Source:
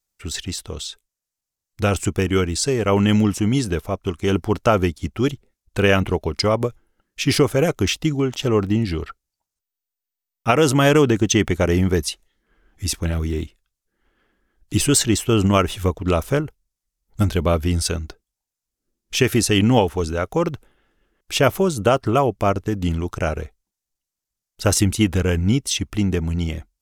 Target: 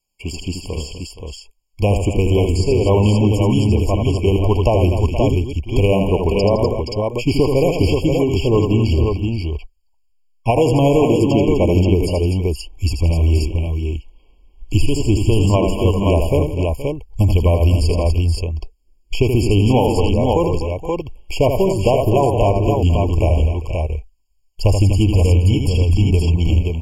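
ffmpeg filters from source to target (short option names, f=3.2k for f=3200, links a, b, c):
-filter_complex "[0:a]acrossover=split=1500[a][b];[b]acontrast=29[c];[a][c]amix=inputs=2:normalize=0,highshelf=f=6.8k:g=-9.5,asplit=2[d][e];[e]aecho=0:1:78|160|246|471|527:0.473|0.141|0.224|0.158|0.531[f];[d][f]amix=inputs=2:normalize=0,asubboost=boost=11.5:cutoff=53,acrossover=split=1200|5600[g][h][i];[g]acompressor=threshold=-15dB:ratio=4[j];[h]acompressor=threshold=-37dB:ratio=4[k];[i]acompressor=threshold=-40dB:ratio=4[l];[j][k][l]amix=inputs=3:normalize=0,afftfilt=real='re*eq(mod(floor(b*sr/1024/1100),2),0)':imag='im*eq(mod(floor(b*sr/1024/1100),2),0)':win_size=1024:overlap=0.75,volume=5dB"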